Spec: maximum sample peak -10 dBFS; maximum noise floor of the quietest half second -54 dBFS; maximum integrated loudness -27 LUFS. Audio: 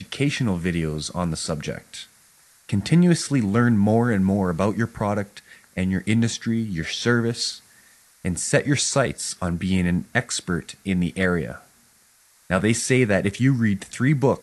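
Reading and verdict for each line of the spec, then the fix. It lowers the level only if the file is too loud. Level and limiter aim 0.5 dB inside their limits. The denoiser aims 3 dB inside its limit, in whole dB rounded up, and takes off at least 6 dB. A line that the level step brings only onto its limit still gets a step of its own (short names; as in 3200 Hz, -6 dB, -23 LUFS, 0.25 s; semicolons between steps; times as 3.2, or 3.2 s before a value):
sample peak -3.0 dBFS: fail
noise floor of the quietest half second -58 dBFS: OK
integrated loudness -22.5 LUFS: fail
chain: gain -5 dB; limiter -10.5 dBFS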